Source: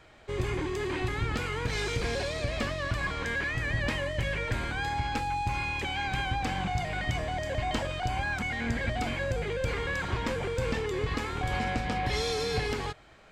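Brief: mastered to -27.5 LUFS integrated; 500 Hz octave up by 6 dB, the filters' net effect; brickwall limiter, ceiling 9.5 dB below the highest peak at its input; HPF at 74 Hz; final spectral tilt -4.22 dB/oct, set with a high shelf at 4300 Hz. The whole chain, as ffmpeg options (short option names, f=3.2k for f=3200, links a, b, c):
-af "highpass=74,equalizer=f=500:t=o:g=7,highshelf=f=4.3k:g=8,volume=3.5dB,alimiter=limit=-19.5dB:level=0:latency=1"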